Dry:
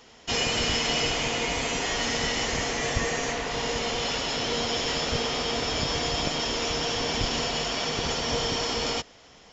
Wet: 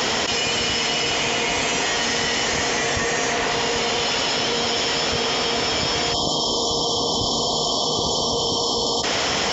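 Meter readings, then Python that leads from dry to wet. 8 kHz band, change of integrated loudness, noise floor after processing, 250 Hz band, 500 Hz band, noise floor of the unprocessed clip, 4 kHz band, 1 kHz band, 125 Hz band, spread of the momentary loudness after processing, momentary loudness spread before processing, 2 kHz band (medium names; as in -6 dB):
no reading, +6.5 dB, -22 dBFS, +4.5 dB, +6.0 dB, -53 dBFS, +7.0 dB, +7.0 dB, +2.0 dB, 1 LU, 4 LU, +6.0 dB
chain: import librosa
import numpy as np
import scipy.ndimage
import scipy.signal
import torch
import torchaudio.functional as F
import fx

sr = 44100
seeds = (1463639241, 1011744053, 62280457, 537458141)

y = fx.spec_erase(x, sr, start_s=6.14, length_s=2.9, low_hz=1200.0, high_hz=3000.0)
y = scipy.signal.sosfilt(scipy.signal.butter(2, 60.0, 'highpass', fs=sr, output='sos'), y)
y = fx.low_shelf(y, sr, hz=260.0, db=-5.5)
y = fx.env_flatten(y, sr, amount_pct=100)
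y = F.gain(torch.from_numpy(y), 3.0).numpy()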